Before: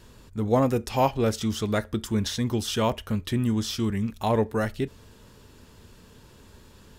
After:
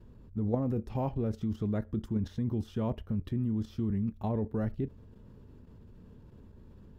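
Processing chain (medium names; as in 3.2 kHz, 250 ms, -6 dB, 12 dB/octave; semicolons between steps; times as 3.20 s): FFT filter 210 Hz 0 dB, 9.1 kHz -28 dB, 14 kHz -22 dB; level held to a coarse grid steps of 11 dB; trim +3 dB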